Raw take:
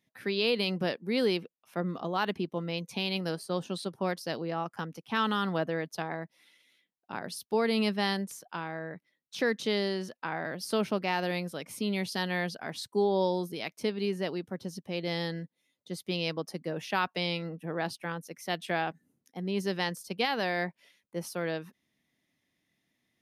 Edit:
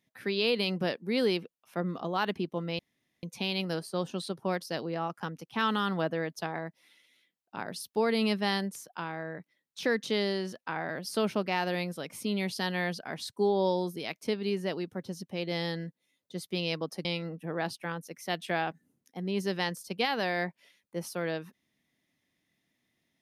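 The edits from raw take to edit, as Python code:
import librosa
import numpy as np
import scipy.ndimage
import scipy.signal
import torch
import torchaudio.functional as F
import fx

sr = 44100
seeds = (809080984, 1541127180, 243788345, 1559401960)

y = fx.edit(x, sr, fx.insert_room_tone(at_s=2.79, length_s=0.44),
    fx.cut(start_s=16.61, length_s=0.64), tone=tone)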